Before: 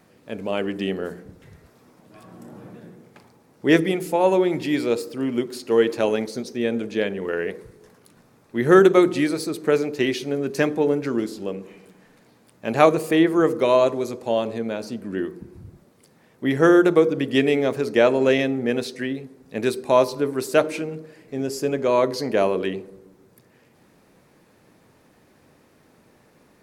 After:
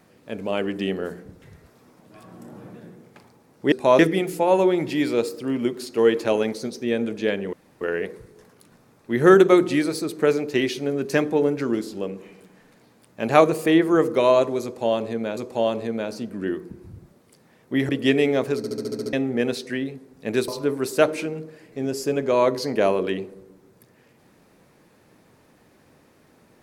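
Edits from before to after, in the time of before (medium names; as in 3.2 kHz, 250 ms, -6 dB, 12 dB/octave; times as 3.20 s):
7.26 s: insert room tone 0.28 s
14.08–14.82 s: loop, 2 plays
16.60–17.18 s: delete
17.86 s: stutter in place 0.07 s, 8 plays
19.77–20.04 s: move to 3.72 s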